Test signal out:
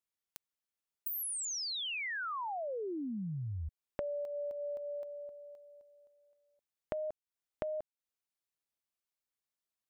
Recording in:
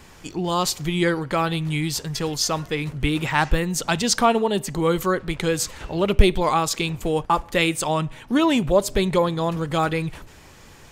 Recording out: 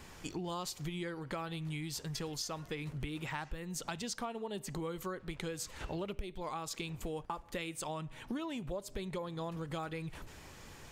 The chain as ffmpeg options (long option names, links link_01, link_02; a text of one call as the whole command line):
ffmpeg -i in.wav -af "acompressor=threshold=-31dB:ratio=12,volume=-5.5dB" out.wav